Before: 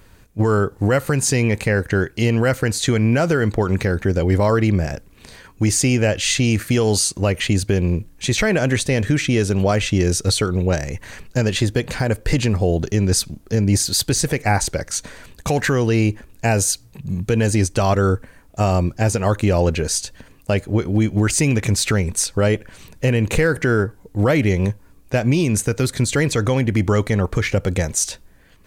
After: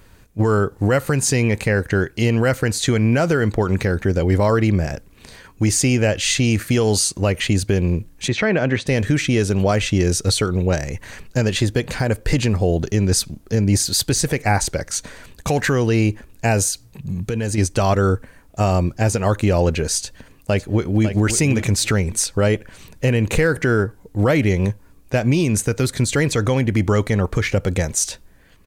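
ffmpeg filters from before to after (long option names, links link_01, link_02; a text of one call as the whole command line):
ffmpeg -i in.wav -filter_complex "[0:a]asettb=1/sr,asplit=3[link_01][link_02][link_03];[link_01]atrim=end=8.284[link_04];[link_02]atrim=start=8.28:end=8.87,asetpts=PTS-STARTPTS,afade=type=in:duration=0.004:curve=qsin,afade=type=out:start_time=0.586:duration=0.004:curve=qsin,highpass=110,lowpass=3200[link_05];[link_03]atrim=start=8.866[link_06];[link_04][link_05]acrossfade=duration=0.004:curve1=hsin:curve2=qsin[link_07];[link_07][link_06]acrossfade=duration=0.004:curve1=qsin:curve2=hsin,asettb=1/sr,asplit=3[link_08][link_09][link_10];[link_08]atrim=end=16.684[link_11];[link_09]atrim=start=16.68:end=17.58,asetpts=PTS-STARTPTS,afade=type=in:duration=0.004:curve=qsin,afade=type=out:start_time=0.896:duration=0.004:curve=qsin,acompressor=threshold=-20dB:ratio=2.5:attack=3.2:release=140:knee=1:detection=peak[link_12];[link_10]atrim=start=17.576[link_13];[link_11][link_12]acrossfade=duration=0.004:curve1=hsin:curve2=qsin[link_14];[link_14][link_13]acrossfade=duration=0.004:curve1=qsin:curve2=hsin,asplit=2[link_15][link_16];[link_16]afade=type=in:start_time=20.04:duration=0.01,afade=type=out:start_time=21.07:duration=0.01,aecho=0:1:550|1100:0.354813|0.053222[link_17];[link_15][link_17]amix=inputs=2:normalize=0" out.wav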